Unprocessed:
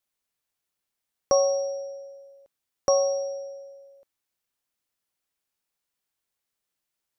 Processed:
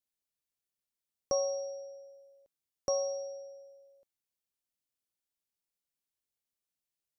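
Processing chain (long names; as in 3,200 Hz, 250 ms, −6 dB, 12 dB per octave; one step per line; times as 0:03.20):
parametric band 1,300 Hz −7 dB 2.1 octaves
level −7 dB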